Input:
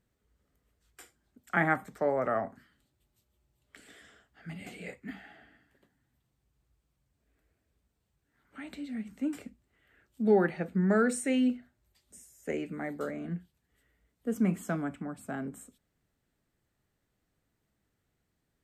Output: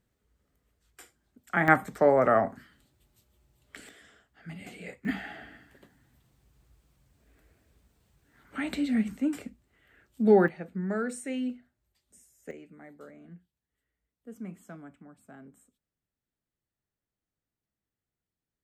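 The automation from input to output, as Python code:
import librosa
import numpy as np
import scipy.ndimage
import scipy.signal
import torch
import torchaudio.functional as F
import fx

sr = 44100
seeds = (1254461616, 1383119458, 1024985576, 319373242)

y = fx.gain(x, sr, db=fx.steps((0.0, 1.0), (1.68, 7.5), (3.89, 0.0), (5.05, 11.0), (9.17, 4.0), (10.48, -5.5), (12.51, -13.0)))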